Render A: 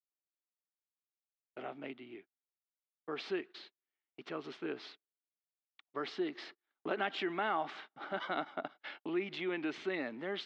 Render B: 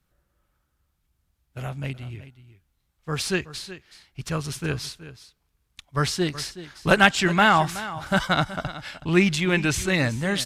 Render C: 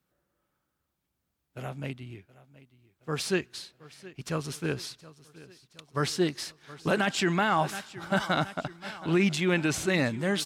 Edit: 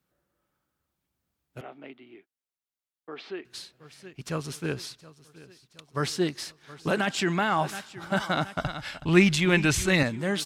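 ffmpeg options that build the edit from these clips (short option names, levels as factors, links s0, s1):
-filter_complex "[2:a]asplit=3[s0][s1][s2];[s0]atrim=end=1.612[s3];[0:a]atrim=start=1.608:end=3.452[s4];[s1]atrim=start=3.448:end=8.572[s5];[1:a]atrim=start=8.568:end=10.032[s6];[s2]atrim=start=10.028[s7];[s3][s4]acrossfade=d=0.004:c1=hsin:c2=hsin[s8];[s8][s5]acrossfade=d=0.004:c1=hsin:c2=hsin[s9];[s9][s6]acrossfade=d=0.004:c1=hsin:c2=hsin[s10];[s10][s7]acrossfade=d=0.004:c1=hsin:c2=hsin"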